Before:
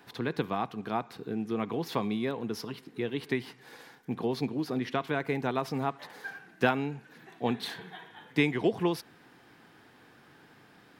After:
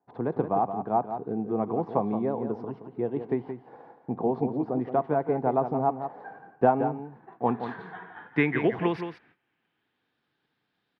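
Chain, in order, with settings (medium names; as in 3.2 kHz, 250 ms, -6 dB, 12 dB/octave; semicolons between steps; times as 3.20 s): gate -52 dBFS, range -24 dB; low-pass sweep 770 Hz -> 3.8 kHz, 6.83–10.17 s; on a send: delay 172 ms -9 dB; on the sum: trim +1.5 dB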